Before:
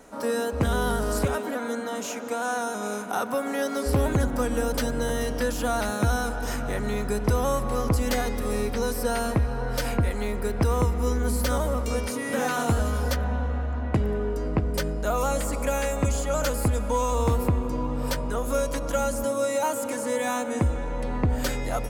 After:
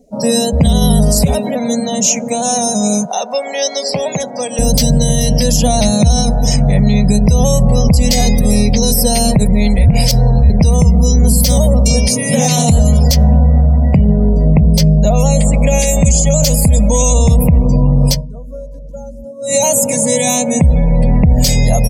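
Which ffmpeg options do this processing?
-filter_complex "[0:a]asettb=1/sr,asplit=3[a][b][c];[a]atrim=end=3.054[d];[b]atrim=start=3.05:end=4.59,asetpts=PTS-STARTPTS,afade=t=in:d=0.004:c=qsin,afade=t=out:st=1.536:d=0.004:c=qsin,highpass=550,lowpass=7.4k[e];[c]atrim=start=4.586[f];[d][e]acrossfade=d=0.004:c1=hsin:c2=qsin[g];[g][f]acrossfade=d=0.004:c1=qsin:c2=hsin,asettb=1/sr,asplit=3[h][i][j];[h]atrim=end=5.564[k];[i]atrim=start=5.56:end=8.13,asetpts=PTS-STARTPTS,afade=t=in:d=0.004:c=qsin,afade=t=out:st=2.566:d=0.004:c=qsin,highshelf=f=9k:g=-5[l];[j]atrim=start=8.126[m];[k][l]acrossfade=d=0.004:c1=hsin:c2=qsin[n];[n][m]acrossfade=d=0.004:c1=qsin:c2=hsin,asplit=3[o][p][q];[o]afade=t=out:st=14.33:d=0.02[r];[p]adynamicequalizer=threshold=0.00398:dfrequency=4200:dqfactor=0.7:tfrequency=4200:tqfactor=0.7:attack=5:release=100:ratio=0.375:range=4:mode=cutabove:tftype=highshelf,afade=t=in:st=14.33:d=0.02,afade=t=out:st=15.78:d=0.02[s];[q]afade=t=in:st=15.78:d=0.02[t];[r][s][t]amix=inputs=3:normalize=0,asplit=5[u][v][w][x][y];[u]atrim=end=9.392[z];[v]atrim=start=9.388:end=10.502,asetpts=PTS-STARTPTS,areverse[aa];[w]atrim=start=10.498:end=18.27,asetpts=PTS-STARTPTS,afade=t=out:st=7.592:d=0.18:c=qua:silence=0.141254[ab];[x]atrim=start=18.27:end=19.37,asetpts=PTS-STARTPTS,volume=-17dB[ac];[y]atrim=start=19.37,asetpts=PTS-STARTPTS,afade=t=in:d=0.18:c=qua:silence=0.141254[ad];[z][aa]acrossfade=d=0.004:c1=hsin:c2=hsin[ae];[ab][ac][ad]concat=n=3:v=0:a=1[af];[ae][af]acrossfade=d=0.004:c1=hsin:c2=hsin,afftdn=nr=33:nf=-40,firequalizer=gain_entry='entry(100,0);entry(160,12);entry(300,-15);entry(620,-3);entry(1400,-28);entry(2100,-4);entry(3400,0);entry(4900,10);entry(9500,4);entry(15000,9)':delay=0.05:min_phase=1,alimiter=level_in=20dB:limit=-1dB:release=50:level=0:latency=1,volume=-1dB"

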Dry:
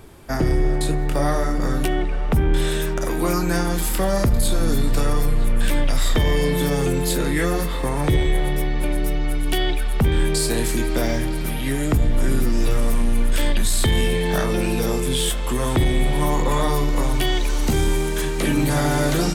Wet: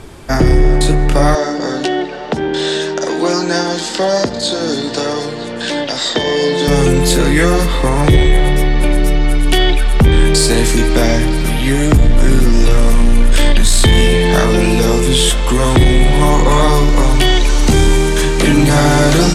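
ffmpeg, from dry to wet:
-filter_complex "[0:a]asettb=1/sr,asplit=3[a][b][c];[a]atrim=end=1.354[d];[b]atrim=start=1.35:end=6.68,asetpts=PTS-STARTPTS,afade=t=in:d=0.004:c=qsin,afade=t=out:st=5.326:d=0.004:c=qsin,highpass=300,equalizer=f=1.2k:t=q:w=4:g=-8,equalizer=f=2.3k:t=q:w=4:g=-8,equalizer=f=4.4k:t=q:w=4:g=4,lowpass=f=6.9k:w=0.5412,lowpass=f=6.9k:w=1.3066[e];[c]atrim=start=6.676[f];[d][e]acrossfade=d=0.004:c1=hsin:c2=qsin[g];[g][f]acrossfade=d=0.004:c1=qsin:c2=hsin,lowpass=7.4k,highshelf=f=5.4k:g=5.5,acontrast=63,volume=3.5dB"

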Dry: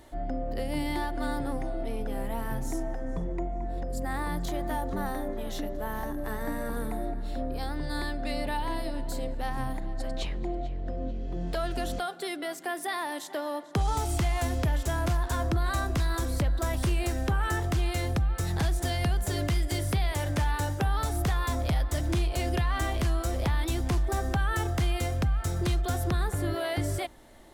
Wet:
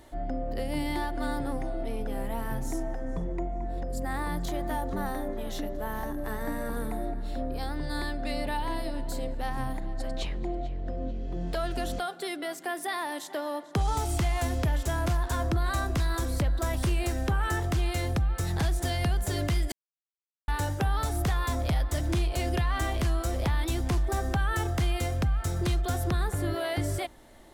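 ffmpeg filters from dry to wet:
-filter_complex "[0:a]asplit=3[a][b][c];[a]atrim=end=19.72,asetpts=PTS-STARTPTS,afade=t=out:st=19.716:d=0.004:c=hsin[d];[b]atrim=start=19.72:end=20.48,asetpts=PTS-STARTPTS,volume=0[e];[c]atrim=start=20.48,asetpts=PTS-STARTPTS,afade=t=in:d=0.004:c=hsin[f];[d][e][f]concat=n=3:v=0:a=1"

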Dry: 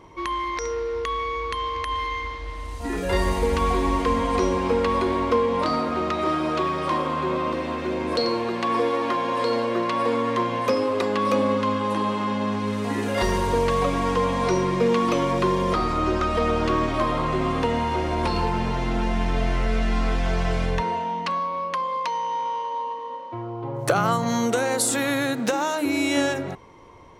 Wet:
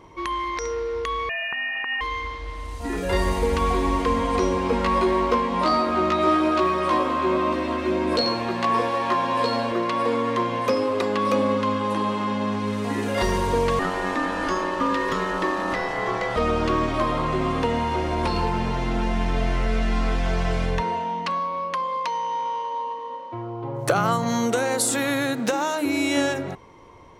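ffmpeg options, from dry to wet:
-filter_complex "[0:a]asettb=1/sr,asplit=3[a][b][c];[a]atrim=end=1.294[d];[b]atrim=start=1.29:end=2.01,asetpts=PTS-STARTPTS,afade=t=in:d=0.004:c=qsin,afade=t=out:st=0.716:d=0.004:c=qsin,lowpass=f=2.5k:t=q:w=0.5098,lowpass=f=2.5k:t=q:w=0.6013,lowpass=f=2.5k:t=q:w=0.9,lowpass=f=2.5k:t=q:w=2.563,afreqshift=-2900[e];[c]atrim=start=2.006[f];[d][e]acrossfade=d=0.004:c1=hsin:c2=qsin[g];[g][f]acrossfade=d=0.004:c1=qsin:c2=hsin,asettb=1/sr,asplit=3[h][i][j];[h]atrim=end=4.714[k];[i]atrim=start=4.71:end=9.72,asetpts=PTS-STARTPTS,afade=t=in:d=0.004:c=qsin,afade=t=out:st=5.006:d=0.004:c=qsin,asplit=2[l][m];[m]adelay=16,volume=-2.5dB[n];[l][n]amix=inputs=2:normalize=0,atrim=end_sample=220941[o];[j]atrim=start=9.716[p];[k][o]acrossfade=d=0.004:c1=hsin:c2=qsin[q];[q][p]acrossfade=d=0.004:c1=qsin:c2=hsin,asettb=1/sr,asplit=3[r][s][t];[r]atrim=end=13.794[u];[s]atrim=start=13.79:end=16.36,asetpts=PTS-STARTPTS,afade=t=in:d=0.004:c=qsin,afade=t=out:st=2.566:d=0.004:c=qsin,aeval=exprs='val(0)*sin(2*PI*740*n/s)':c=same[v];[t]atrim=start=16.356[w];[u][v]acrossfade=d=0.004:c1=hsin:c2=qsin[x];[x][w]acrossfade=d=0.004:c1=qsin:c2=hsin"

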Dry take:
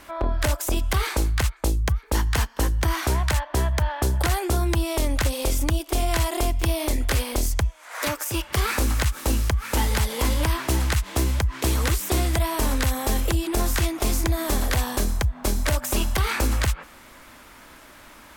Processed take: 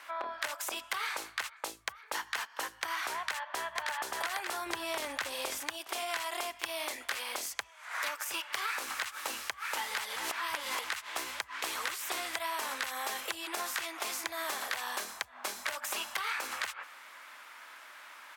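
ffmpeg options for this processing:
-filter_complex "[0:a]asplit=2[a][b];[b]afade=t=in:st=3.17:d=0.01,afade=t=out:st=3.82:d=0.01,aecho=0:1:580|1160|1740|2320|2900|3480|4060:0.794328|0.397164|0.198582|0.099291|0.0496455|0.0248228|0.0124114[c];[a][c]amix=inputs=2:normalize=0,asettb=1/sr,asplit=3[d][e][f];[d]atrim=end=4.664[g];[e]atrim=start=4.66:end=5.59,asetpts=PTS-STARTPTS,afade=t=in:d=0.004:c=qsin,afade=t=out:st=0.926:d=0.004:c=qsin,lowshelf=f=360:g=9[h];[f]atrim=start=5.586[i];[g][h]acrossfade=d=0.004:c1=hsin:c2=qsin[j];[j][i]acrossfade=d=0.004:c1=qsin:c2=hsin,asplit=3[k][l][m];[k]atrim=end=10.162[n];[l]atrim=start=10.158:end=10.842,asetpts=PTS-STARTPTS,areverse[o];[m]atrim=start=10.838[p];[n][o]acrossfade=d=0.004:c1=hsin:c2=hsin[q];[q][p]acrossfade=d=0.004:c1=hsin:c2=hsin,highpass=1.2k,highshelf=f=3.7k:g=-11.5,acompressor=threshold=-34dB:ratio=6,volume=2.5dB"

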